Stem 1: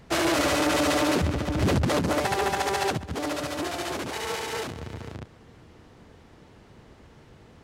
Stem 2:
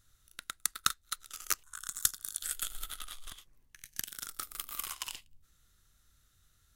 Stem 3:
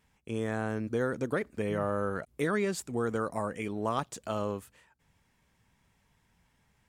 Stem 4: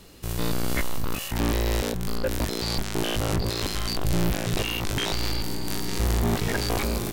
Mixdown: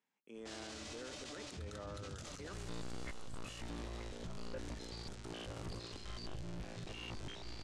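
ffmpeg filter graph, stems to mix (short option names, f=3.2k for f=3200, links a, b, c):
-filter_complex "[0:a]acrossover=split=120|3000[a][b][c];[b]acompressor=threshold=-44dB:ratio=2[d];[a][d][c]amix=inputs=3:normalize=0,flanger=delay=18.5:depth=7:speed=1.2,adelay=350,volume=-13dB[e];[1:a]acompressor=threshold=-46dB:ratio=2.5,adelay=850,volume=1.5dB[f];[2:a]highpass=f=210:w=0.5412,highpass=f=210:w=1.3066,volume=-16dB[g];[3:a]alimiter=limit=-17.5dB:level=0:latency=1:release=425,adelay=2300,volume=-2dB,asplit=2[h][i];[i]volume=-12dB,aecho=0:1:931:1[j];[e][f][g][h][j]amix=inputs=5:normalize=0,lowpass=f=8k:w=0.5412,lowpass=f=8k:w=1.3066,alimiter=level_in=14dB:limit=-24dB:level=0:latency=1:release=24,volume=-14dB"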